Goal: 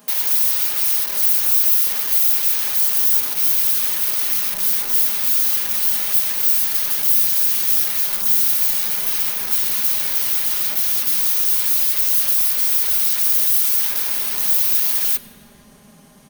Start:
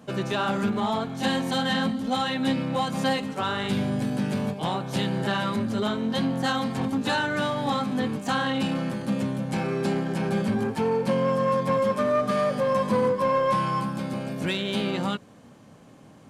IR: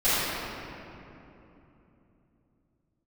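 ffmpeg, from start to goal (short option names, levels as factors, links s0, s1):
-filter_complex "[0:a]aeval=exprs='(mod(39.8*val(0)+1,2)-1)/39.8':c=same,aemphasis=mode=production:type=riaa,bandreject=f=7400:w=6,aecho=1:1:4.9:0.65,asplit=2[s0][s1];[s1]asubboost=boost=9.5:cutoff=220[s2];[1:a]atrim=start_sample=2205,asetrate=33957,aresample=44100,lowshelf=f=350:g=6[s3];[s2][s3]afir=irnorm=-1:irlink=0,volume=0.0266[s4];[s0][s4]amix=inputs=2:normalize=0"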